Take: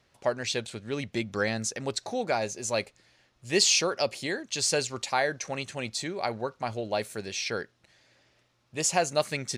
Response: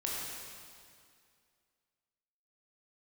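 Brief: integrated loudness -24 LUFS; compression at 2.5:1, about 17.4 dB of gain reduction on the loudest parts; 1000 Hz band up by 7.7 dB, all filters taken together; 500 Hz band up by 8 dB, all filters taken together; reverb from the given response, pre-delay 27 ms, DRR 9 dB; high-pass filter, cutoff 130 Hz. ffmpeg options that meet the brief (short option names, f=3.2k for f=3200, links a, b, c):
-filter_complex "[0:a]highpass=130,equalizer=f=500:t=o:g=7.5,equalizer=f=1k:t=o:g=7.5,acompressor=threshold=-40dB:ratio=2.5,asplit=2[a][b];[1:a]atrim=start_sample=2205,adelay=27[c];[b][c]afir=irnorm=-1:irlink=0,volume=-13dB[d];[a][d]amix=inputs=2:normalize=0,volume=13.5dB"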